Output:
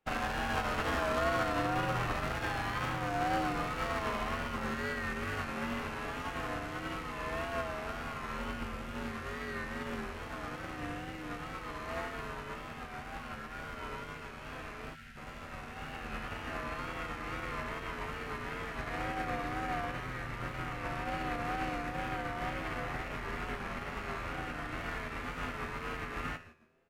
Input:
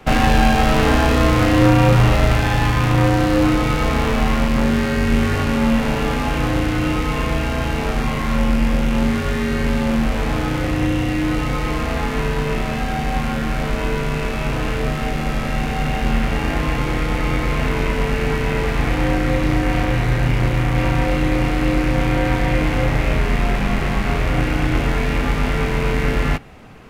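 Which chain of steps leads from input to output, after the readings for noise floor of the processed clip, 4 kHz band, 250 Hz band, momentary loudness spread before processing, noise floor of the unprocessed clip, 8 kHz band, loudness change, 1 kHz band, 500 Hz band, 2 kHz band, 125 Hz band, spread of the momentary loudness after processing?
−46 dBFS, −16.5 dB, −22.0 dB, 7 LU, −22 dBFS, −17.5 dB, −18.0 dB, −13.0 dB, −17.5 dB, −14.0 dB, −24.0 dB, 10 LU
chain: tuned comb filter 92 Hz, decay 1.5 s, harmonics all, mix 40%
on a send: echo with shifted repeats 151 ms, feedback 53%, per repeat −140 Hz, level −9 dB
on the sum: dynamic equaliser 1,300 Hz, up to +7 dB, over −39 dBFS, Q 1.4
tuned comb filter 82 Hz, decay 1.1 s, harmonics all, mix 80%
in parallel at −7.5 dB: soft clipping −23 dBFS, distortion −18 dB
on the sum: brickwall limiter −20 dBFS, peak gain reduction 6.5 dB
tape wow and flutter 66 cents
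gain on a spectral selection 0:14.95–0:15.17, 250–1,300 Hz −16 dB
low-shelf EQ 290 Hz −6 dB
expander for the loud parts 2.5 to 1, over −44 dBFS

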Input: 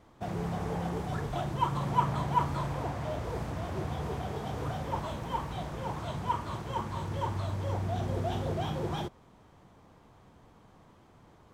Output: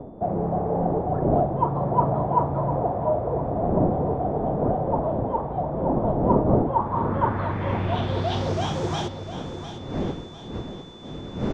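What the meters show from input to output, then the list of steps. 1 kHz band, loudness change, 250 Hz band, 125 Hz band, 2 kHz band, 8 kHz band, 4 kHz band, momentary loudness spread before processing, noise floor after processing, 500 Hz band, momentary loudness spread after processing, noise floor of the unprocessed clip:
+8.5 dB, +9.0 dB, +12.0 dB, +7.5 dB, +3.5 dB, can't be measured, +6.5 dB, 7 LU, −38 dBFS, +13.5 dB, 13 LU, −59 dBFS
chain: wind on the microphone 290 Hz −36 dBFS
low-shelf EQ 80 Hz −7 dB
steady tone 3,500 Hz −60 dBFS
low-pass filter sweep 670 Hz → 6,400 Hz, 0:06.57–0:08.64
on a send: repeating echo 702 ms, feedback 43%, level −11 dB
on the sum: level +7 dB

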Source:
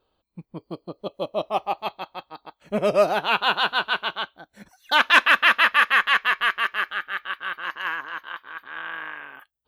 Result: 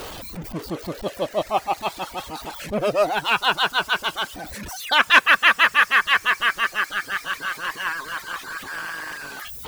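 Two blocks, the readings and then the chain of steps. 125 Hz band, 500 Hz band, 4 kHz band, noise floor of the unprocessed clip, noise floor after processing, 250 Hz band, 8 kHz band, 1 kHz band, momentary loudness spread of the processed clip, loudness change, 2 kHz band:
+4.0 dB, 0.0 dB, +2.0 dB, −76 dBFS, −42 dBFS, +2.0 dB, +10.0 dB, +1.0 dB, 18 LU, +0.5 dB, +1.5 dB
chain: converter with a step at zero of −28 dBFS
reverb reduction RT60 0.85 s
harmonic and percussive parts rebalanced harmonic −5 dB
level +2 dB

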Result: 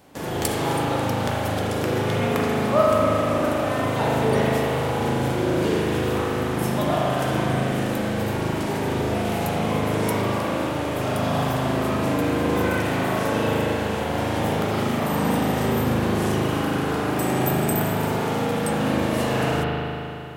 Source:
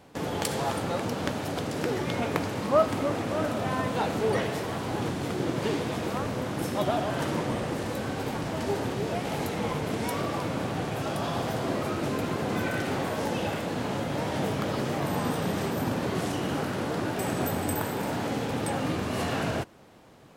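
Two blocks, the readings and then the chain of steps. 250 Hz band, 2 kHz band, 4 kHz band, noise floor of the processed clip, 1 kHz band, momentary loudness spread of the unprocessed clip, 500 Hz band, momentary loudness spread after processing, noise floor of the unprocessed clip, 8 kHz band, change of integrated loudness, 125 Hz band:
+6.5 dB, +6.5 dB, +5.0 dB, −27 dBFS, +6.5 dB, 4 LU, +6.5 dB, 4 LU, −33 dBFS, +5.0 dB, +6.5 dB, +7.5 dB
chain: high-shelf EQ 8,500 Hz +10.5 dB
spring reverb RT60 3 s, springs 38 ms, chirp 75 ms, DRR −5 dB

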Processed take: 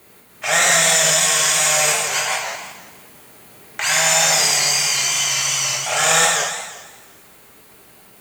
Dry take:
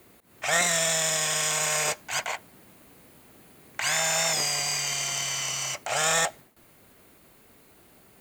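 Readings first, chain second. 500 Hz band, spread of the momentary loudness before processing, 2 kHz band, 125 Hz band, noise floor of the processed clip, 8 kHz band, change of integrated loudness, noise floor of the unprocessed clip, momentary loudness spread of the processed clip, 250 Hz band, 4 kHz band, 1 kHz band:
+7.5 dB, 8 LU, +10.0 dB, +6.0 dB, −48 dBFS, +10.5 dB, +10.0 dB, −57 dBFS, 11 LU, +6.0 dB, +10.0 dB, +9.5 dB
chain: low-shelf EQ 420 Hz −7 dB
coupled-rooms reverb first 0.95 s, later 2.9 s, from −26 dB, DRR −2.5 dB
feedback echo with a swinging delay time 170 ms, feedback 34%, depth 213 cents, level −7 dB
level +5 dB

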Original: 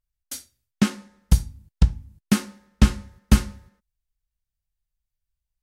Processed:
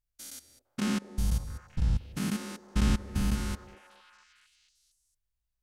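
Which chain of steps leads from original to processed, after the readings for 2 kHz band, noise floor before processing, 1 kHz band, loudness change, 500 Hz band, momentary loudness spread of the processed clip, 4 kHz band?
−6.5 dB, −84 dBFS, −6.0 dB, −9.0 dB, −6.0 dB, 15 LU, −7.0 dB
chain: spectrum averaged block by block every 200 ms
echo through a band-pass that steps 228 ms, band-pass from 470 Hz, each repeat 0.7 octaves, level −8.5 dB
level −1 dB

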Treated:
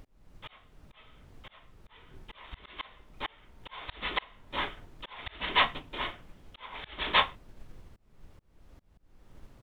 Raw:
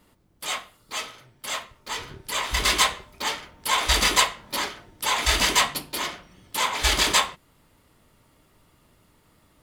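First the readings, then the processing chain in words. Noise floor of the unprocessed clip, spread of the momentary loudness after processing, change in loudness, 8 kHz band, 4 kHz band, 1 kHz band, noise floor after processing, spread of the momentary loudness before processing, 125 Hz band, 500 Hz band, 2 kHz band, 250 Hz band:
−62 dBFS, 24 LU, −8.5 dB, below −40 dB, −11.0 dB, −8.0 dB, −64 dBFS, 14 LU, −13.0 dB, −9.0 dB, −9.0 dB, −10.0 dB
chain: mains-hum notches 60/120/180/240/300 Hz
downsampling to 8,000 Hz
background noise brown −39 dBFS
volume swells 382 ms
expander for the loud parts 1.5 to 1, over −41 dBFS

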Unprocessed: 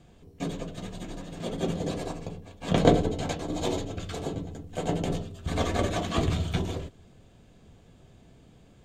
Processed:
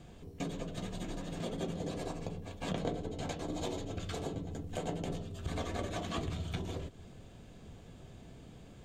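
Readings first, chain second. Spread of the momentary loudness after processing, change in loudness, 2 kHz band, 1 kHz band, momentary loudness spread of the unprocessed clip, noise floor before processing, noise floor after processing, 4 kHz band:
16 LU, −9.5 dB, −8.5 dB, −9.5 dB, 15 LU, −56 dBFS, −54 dBFS, −8.0 dB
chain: downward compressor 4 to 1, threshold −39 dBFS, peak gain reduction 21 dB
level +2.5 dB

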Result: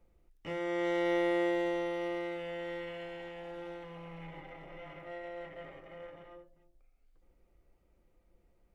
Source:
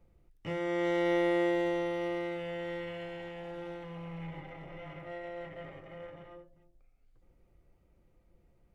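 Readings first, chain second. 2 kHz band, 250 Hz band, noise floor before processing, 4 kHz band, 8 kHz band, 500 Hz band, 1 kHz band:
−1.0 dB, −2.5 dB, −68 dBFS, −1.0 dB, can't be measured, −1.5 dB, −1.0 dB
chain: parametric band 120 Hz −9 dB 1.2 octaves
level −1 dB

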